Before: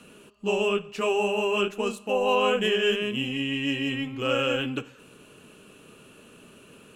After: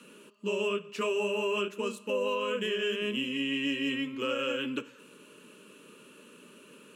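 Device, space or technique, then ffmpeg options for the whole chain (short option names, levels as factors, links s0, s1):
PA system with an anti-feedback notch: -af "highpass=f=180:w=0.5412,highpass=f=180:w=1.3066,asuperstop=centerf=730:order=12:qfactor=3.4,alimiter=limit=0.106:level=0:latency=1:release=209,volume=0.794"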